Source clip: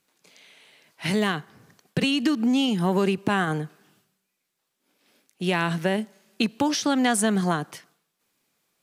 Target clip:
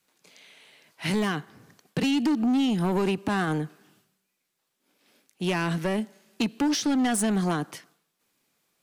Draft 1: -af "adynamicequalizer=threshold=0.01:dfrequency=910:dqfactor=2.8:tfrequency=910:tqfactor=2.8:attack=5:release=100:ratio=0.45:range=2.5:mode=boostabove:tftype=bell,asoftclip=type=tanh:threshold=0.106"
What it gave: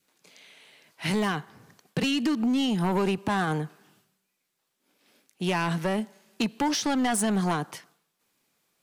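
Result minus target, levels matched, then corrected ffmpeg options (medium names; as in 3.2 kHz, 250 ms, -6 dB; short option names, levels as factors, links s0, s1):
1 kHz band +3.0 dB
-af "adynamicequalizer=threshold=0.01:dfrequency=290:dqfactor=2.8:tfrequency=290:tqfactor=2.8:attack=5:release=100:ratio=0.45:range=2.5:mode=boostabove:tftype=bell,asoftclip=type=tanh:threshold=0.106"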